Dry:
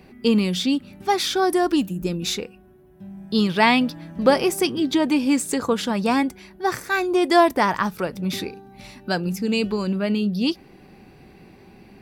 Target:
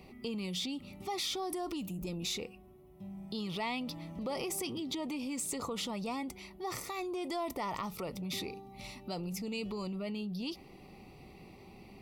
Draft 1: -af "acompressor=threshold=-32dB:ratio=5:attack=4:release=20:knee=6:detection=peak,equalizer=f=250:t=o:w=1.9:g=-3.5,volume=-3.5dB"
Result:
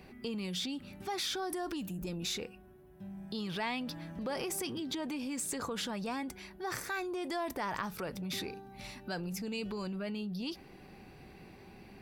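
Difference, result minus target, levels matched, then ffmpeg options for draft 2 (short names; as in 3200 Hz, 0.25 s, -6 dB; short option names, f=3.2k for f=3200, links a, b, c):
2000 Hz band +3.5 dB
-af "acompressor=threshold=-32dB:ratio=5:attack=4:release=20:knee=6:detection=peak,asuperstop=centerf=1600:order=4:qfactor=2.8,equalizer=f=250:t=o:w=1.9:g=-3.5,volume=-3.5dB"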